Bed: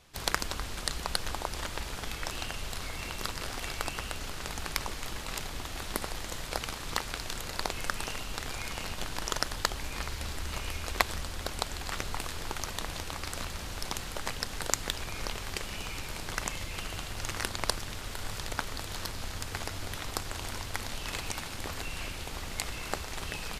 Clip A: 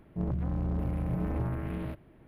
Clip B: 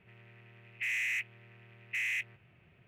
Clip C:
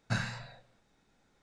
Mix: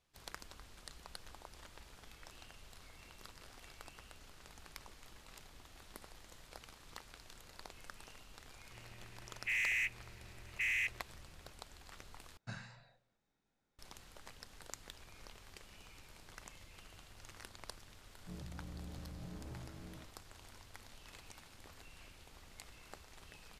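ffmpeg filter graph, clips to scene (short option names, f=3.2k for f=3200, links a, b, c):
-filter_complex "[0:a]volume=-19.5dB,asplit=2[a][b];[a]atrim=end=12.374[c];[3:a]atrim=end=1.42,asetpts=PTS-STARTPTS,volume=-14.5dB[d];[b]atrim=start=13.786[e];[2:a]atrim=end=2.87,asetpts=PTS-STARTPTS,volume=-1.5dB,afade=t=in:d=0.004:c=hsin,afade=t=out:st=2.866:d=0.004:c=hsin,adelay=381906S[f];[1:a]atrim=end=2.27,asetpts=PTS-STARTPTS,volume=-17.5dB,afade=t=in:d=0.004:c=hsin,afade=t=out:st=2.266:d=0.004:c=hsin,adelay=18110[g];[c][d]acrossfade=d=0.004:c1=hsin:c2=hsin[h];[h][e]acrossfade=d=0.004:c1=hsin:c2=hsin[i];[i][f][g]amix=inputs=3:normalize=0"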